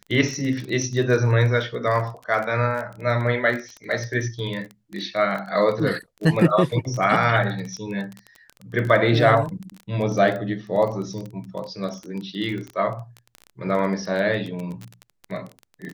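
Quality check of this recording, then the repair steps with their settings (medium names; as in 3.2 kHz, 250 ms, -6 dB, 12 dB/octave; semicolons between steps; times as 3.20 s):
crackle 20 per s -27 dBFS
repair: de-click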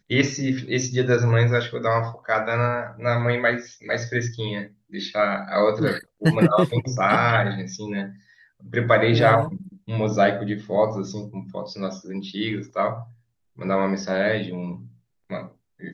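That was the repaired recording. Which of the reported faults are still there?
nothing left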